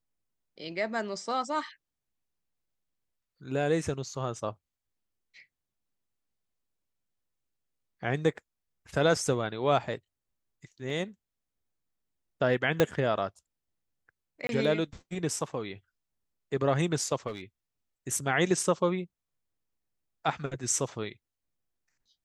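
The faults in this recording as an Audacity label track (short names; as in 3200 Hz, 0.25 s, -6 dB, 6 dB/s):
10.900000	10.900000	gap 2.6 ms
12.800000	12.800000	pop -9 dBFS
14.470000	14.490000	gap 22 ms
17.270000	17.410000	clipped -31.5 dBFS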